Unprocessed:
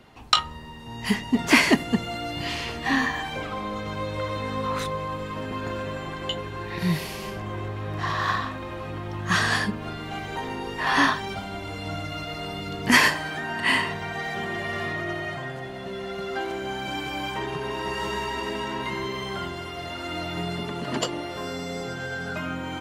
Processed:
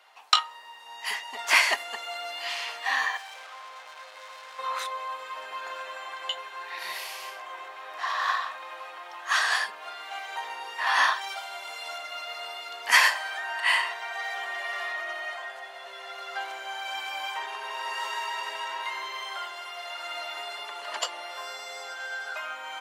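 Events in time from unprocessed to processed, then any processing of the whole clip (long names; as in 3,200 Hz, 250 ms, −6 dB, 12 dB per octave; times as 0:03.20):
0:03.17–0:04.59: tube saturation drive 38 dB, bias 0.7
0:11.21–0:11.98: high-shelf EQ 4,300 Hz +6 dB
whole clip: high-pass filter 690 Hz 24 dB per octave; level −1 dB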